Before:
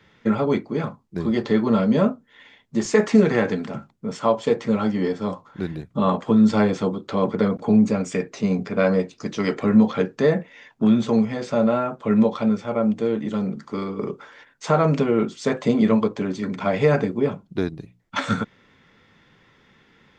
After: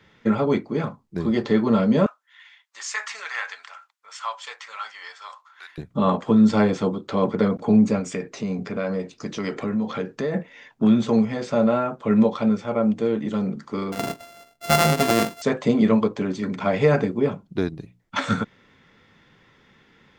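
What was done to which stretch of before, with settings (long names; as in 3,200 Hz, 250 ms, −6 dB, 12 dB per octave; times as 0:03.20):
0:02.06–0:05.78: high-pass filter 1,100 Hz 24 dB per octave
0:07.99–0:10.34: downward compressor 2.5 to 1, threshold −25 dBFS
0:13.92–0:15.42: samples sorted by size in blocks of 64 samples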